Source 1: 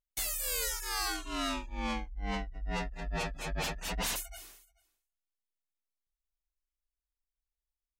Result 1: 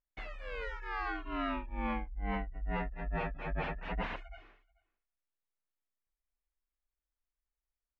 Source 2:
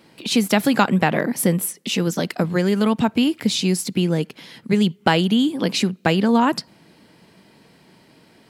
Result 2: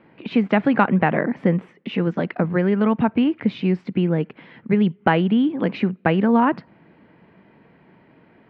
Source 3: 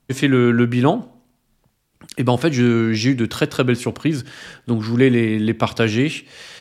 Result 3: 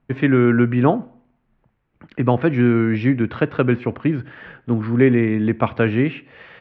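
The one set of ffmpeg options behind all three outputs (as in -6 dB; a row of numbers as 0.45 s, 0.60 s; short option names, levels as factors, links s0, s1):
-af "lowpass=f=2300:w=0.5412,lowpass=f=2300:w=1.3066"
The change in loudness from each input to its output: -3.5 LU, -0.5 LU, 0.0 LU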